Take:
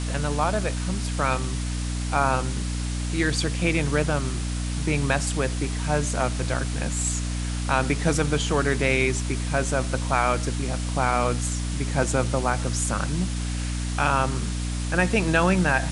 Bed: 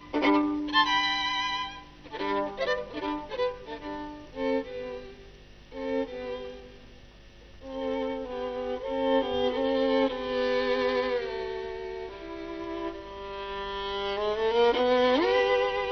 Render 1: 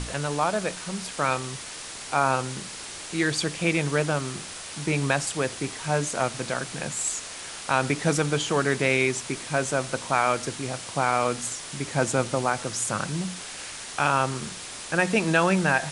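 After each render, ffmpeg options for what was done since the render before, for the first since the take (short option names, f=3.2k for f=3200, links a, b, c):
-af "bandreject=f=60:t=h:w=6,bandreject=f=120:t=h:w=6,bandreject=f=180:t=h:w=6,bandreject=f=240:t=h:w=6,bandreject=f=300:t=h:w=6"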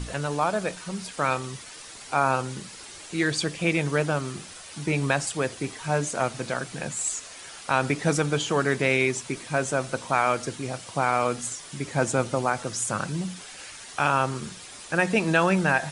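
-af "afftdn=nr=8:nf=-39"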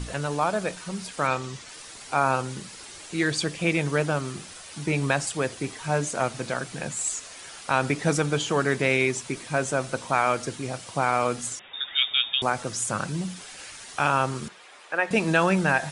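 -filter_complex "[0:a]asettb=1/sr,asplit=3[a][b][c];[a]atrim=end=1.274[d];[b]atrim=start=1.27:end=1.69,asetpts=PTS-STARTPTS,afade=t=in:d=0.004:c=qsin,afade=t=out:st=0.416:d=0.004:c=qsin,lowpass=f=8.1k:w=0.5412,lowpass=f=8.1k:w=1.3066[e];[c]atrim=start=1.686[f];[d][e]acrossfade=d=0.004:c1=hsin:c2=qsin[g];[g][f]acrossfade=d=0.004:c1=qsin:c2=hsin,asettb=1/sr,asplit=3[h][i][j];[h]atrim=end=11.594[k];[i]atrim=start=11.59:end=12.42,asetpts=PTS-STARTPTS,afade=t=in:d=0.004:c=qsin,afade=t=out:st=0.826:d=0.004:c=qsin,lowpass=f=3.2k:t=q:w=0.5098,lowpass=f=3.2k:t=q:w=0.6013,lowpass=f=3.2k:t=q:w=0.9,lowpass=f=3.2k:t=q:w=2.563,afreqshift=-3800[l];[j]atrim=start=12.416[m];[k][l]acrossfade=d=0.004:c1=hsin:c2=qsin[n];[n][m]acrossfade=d=0.004:c1=qsin:c2=hsin,asettb=1/sr,asplit=3[o][p][q];[o]atrim=end=14.484[r];[p]atrim=start=14.48:end=15.11,asetpts=PTS-STARTPTS,afade=t=in:d=0.004:c=qsin,afade=t=out:st=0.626:d=0.004:c=qsin,acrossover=split=390 3100:gain=0.0708 1 0.178[s][t][u];[s][t][u]amix=inputs=3:normalize=0[v];[q]atrim=start=15.106[w];[r][v]acrossfade=d=0.004:c1=hsin:c2=qsin[x];[x][w]acrossfade=d=0.004:c1=qsin:c2=hsin"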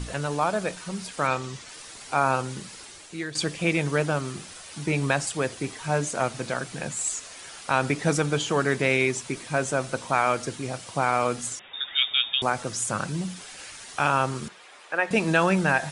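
-filter_complex "[0:a]asplit=2[a][b];[a]atrim=end=3.35,asetpts=PTS-STARTPTS,afade=t=out:st=2.76:d=0.59:silence=0.237137[c];[b]atrim=start=3.35,asetpts=PTS-STARTPTS,afade=t=in:d=0.004:c=hsin:silence=0.237137[d];[c][d]concat=n=2:v=0:a=1"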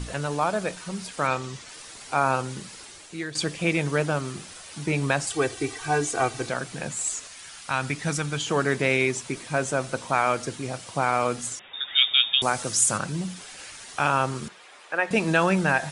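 -filter_complex "[0:a]asettb=1/sr,asplit=3[a][b][c];[a]atrim=end=5.304[d];[b]atrim=start=5.3:end=6.49,asetpts=PTS-STARTPTS,afade=t=in:d=0.004:c=qsin,afade=t=out:st=1.186:d=0.004:c=qsin,aecho=1:1:2.6:0.88,atrim=end_sample=52479[e];[c]atrim=start=6.486[f];[d][e]acrossfade=d=0.004:c1=hsin:c2=qsin[g];[g][f]acrossfade=d=0.004:c1=qsin:c2=hsin,asettb=1/sr,asplit=3[h][i][j];[h]atrim=end=7.274[k];[i]atrim=start=7.27:end=8.47,asetpts=PTS-STARTPTS,afade=t=in:d=0.004:c=qsin,afade=t=out:st=1.196:d=0.004:c=qsin,equalizer=f=460:t=o:w=1.9:g=-9[l];[j]atrim=start=8.466[m];[k][l]acrossfade=d=0.004:c1=hsin:c2=qsin[n];[n][m]acrossfade=d=0.004:c1=qsin:c2=hsin,asettb=1/sr,asplit=3[o][p][q];[o]atrim=end=11.894[r];[p]atrim=start=11.89:end=12.98,asetpts=PTS-STARTPTS,afade=t=in:d=0.004:c=qsin,afade=t=out:st=1.086:d=0.004:c=qsin,highshelf=f=4.6k:g=11[s];[q]atrim=start=12.976[t];[r][s]acrossfade=d=0.004:c1=hsin:c2=qsin[u];[u][t]acrossfade=d=0.004:c1=qsin:c2=hsin"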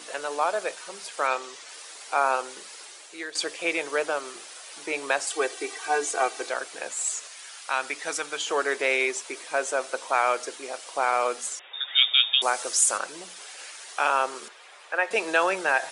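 -af "highpass=f=400:w=0.5412,highpass=f=400:w=1.3066"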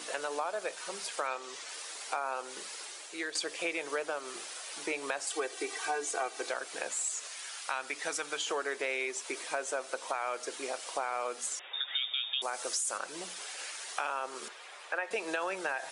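-af "alimiter=limit=-13.5dB:level=0:latency=1:release=25,acompressor=threshold=-32dB:ratio=4"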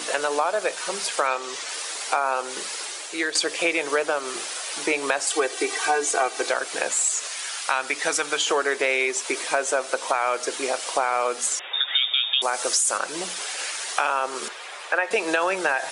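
-af "volume=11.5dB"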